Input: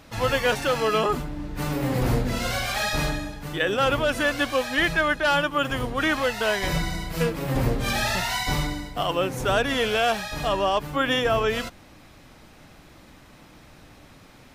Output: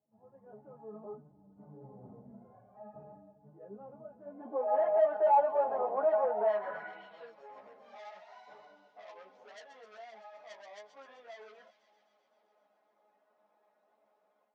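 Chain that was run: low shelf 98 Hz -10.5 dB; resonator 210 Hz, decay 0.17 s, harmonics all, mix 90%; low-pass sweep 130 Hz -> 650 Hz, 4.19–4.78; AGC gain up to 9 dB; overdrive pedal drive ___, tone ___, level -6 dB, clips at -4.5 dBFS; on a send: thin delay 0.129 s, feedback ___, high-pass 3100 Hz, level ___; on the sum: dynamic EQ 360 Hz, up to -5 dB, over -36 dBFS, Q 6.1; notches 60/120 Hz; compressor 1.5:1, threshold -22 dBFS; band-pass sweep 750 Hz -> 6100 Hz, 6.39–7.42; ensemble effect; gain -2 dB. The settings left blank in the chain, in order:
23 dB, 1200 Hz, 75%, -12.5 dB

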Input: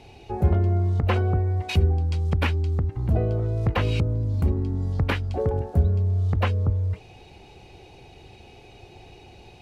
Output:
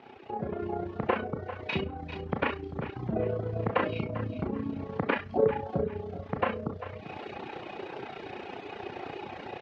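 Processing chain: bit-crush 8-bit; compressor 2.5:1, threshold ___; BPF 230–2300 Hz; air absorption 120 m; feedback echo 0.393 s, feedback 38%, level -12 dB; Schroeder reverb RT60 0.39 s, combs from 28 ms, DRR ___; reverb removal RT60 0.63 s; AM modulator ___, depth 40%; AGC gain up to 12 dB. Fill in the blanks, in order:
-35 dBFS, 1.5 dB, 30 Hz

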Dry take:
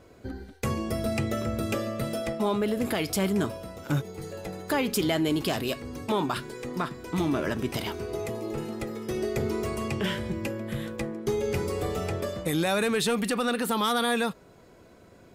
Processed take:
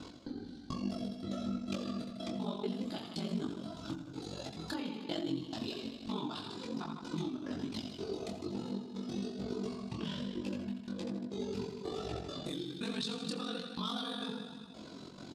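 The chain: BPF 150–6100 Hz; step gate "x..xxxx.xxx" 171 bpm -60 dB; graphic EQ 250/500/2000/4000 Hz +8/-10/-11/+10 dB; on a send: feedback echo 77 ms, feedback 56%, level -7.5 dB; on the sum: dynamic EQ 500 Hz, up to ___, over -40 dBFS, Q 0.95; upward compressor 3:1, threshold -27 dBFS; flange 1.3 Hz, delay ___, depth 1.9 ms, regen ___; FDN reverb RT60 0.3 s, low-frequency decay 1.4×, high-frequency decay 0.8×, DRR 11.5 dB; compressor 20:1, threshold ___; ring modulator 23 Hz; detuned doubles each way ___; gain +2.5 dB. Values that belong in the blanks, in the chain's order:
+3 dB, 0.7 ms, +57%, -30 dBFS, 40 cents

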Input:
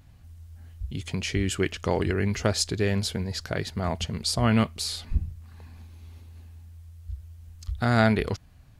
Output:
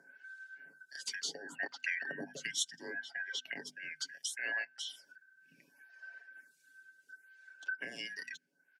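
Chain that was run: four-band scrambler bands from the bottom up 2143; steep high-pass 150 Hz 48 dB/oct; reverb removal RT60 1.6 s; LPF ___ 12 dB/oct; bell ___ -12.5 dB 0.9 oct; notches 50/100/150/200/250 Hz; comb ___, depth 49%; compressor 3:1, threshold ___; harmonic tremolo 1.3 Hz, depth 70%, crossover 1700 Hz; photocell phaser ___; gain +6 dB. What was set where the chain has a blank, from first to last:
9500 Hz, 1200 Hz, 7.2 ms, -39 dBFS, 0.7 Hz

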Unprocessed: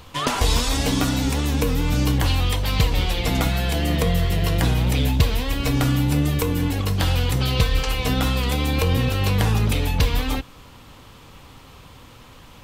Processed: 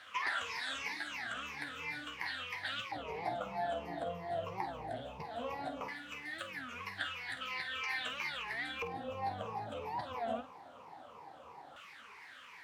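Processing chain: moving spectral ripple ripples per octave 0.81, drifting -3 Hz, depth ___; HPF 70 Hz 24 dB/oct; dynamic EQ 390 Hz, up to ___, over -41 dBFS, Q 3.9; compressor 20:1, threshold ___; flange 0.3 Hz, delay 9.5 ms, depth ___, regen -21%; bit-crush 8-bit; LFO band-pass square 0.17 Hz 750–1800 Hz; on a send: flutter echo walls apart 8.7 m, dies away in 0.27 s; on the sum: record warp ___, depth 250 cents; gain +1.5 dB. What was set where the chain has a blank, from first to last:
18 dB, -6 dB, -22 dBFS, 4.2 ms, 33 1/3 rpm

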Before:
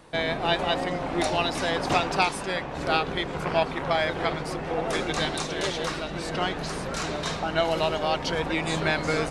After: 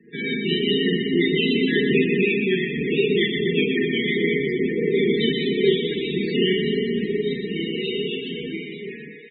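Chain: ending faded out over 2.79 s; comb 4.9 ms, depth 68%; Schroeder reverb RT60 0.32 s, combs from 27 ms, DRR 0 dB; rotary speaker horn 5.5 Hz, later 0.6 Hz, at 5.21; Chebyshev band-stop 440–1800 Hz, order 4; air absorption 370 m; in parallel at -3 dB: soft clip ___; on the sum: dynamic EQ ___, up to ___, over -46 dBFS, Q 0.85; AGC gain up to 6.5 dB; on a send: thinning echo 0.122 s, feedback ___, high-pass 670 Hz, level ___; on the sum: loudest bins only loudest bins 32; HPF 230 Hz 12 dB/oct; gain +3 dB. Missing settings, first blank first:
-24.5 dBFS, 1100 Hz, -8 dB, 76%, -5 dB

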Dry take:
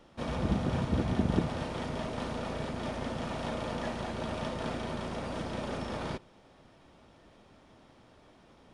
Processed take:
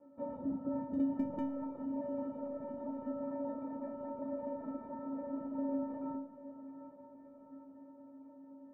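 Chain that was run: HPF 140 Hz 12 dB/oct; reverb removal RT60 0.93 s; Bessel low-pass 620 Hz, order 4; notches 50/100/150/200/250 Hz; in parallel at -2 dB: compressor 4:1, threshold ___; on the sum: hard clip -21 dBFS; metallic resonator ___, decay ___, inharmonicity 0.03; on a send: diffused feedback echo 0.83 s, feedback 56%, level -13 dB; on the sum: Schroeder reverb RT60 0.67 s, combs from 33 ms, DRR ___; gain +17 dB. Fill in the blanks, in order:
-46 dBFS, 270 Hz, 0.73 s, 14.5 dB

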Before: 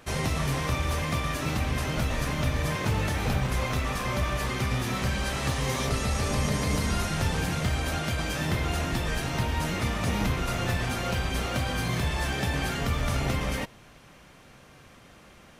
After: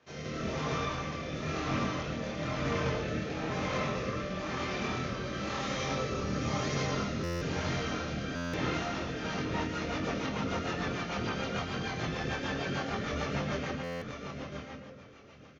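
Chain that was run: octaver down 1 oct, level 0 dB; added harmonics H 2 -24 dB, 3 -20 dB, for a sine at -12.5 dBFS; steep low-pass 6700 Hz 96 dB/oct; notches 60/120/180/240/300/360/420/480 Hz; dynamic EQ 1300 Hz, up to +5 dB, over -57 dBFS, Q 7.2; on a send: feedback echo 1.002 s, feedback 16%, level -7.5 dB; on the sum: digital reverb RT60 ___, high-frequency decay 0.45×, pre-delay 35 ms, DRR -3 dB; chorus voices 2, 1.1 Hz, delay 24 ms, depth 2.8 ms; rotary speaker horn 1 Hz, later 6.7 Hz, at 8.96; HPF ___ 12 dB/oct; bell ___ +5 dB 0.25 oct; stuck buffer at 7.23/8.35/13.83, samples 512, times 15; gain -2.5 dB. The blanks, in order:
1.7 s, 140 Hz, 460 Hz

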